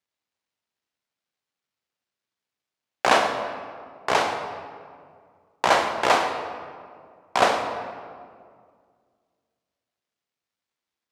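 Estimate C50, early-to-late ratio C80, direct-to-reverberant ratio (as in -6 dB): 6.0 dB, 7.5 dB, 4.5 dB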